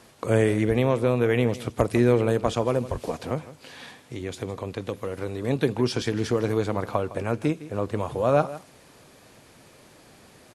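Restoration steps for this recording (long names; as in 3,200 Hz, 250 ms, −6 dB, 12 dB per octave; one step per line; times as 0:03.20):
clipped peaks rebuilt −6.5 dBFS
echo removal 159 ms −16.5 dB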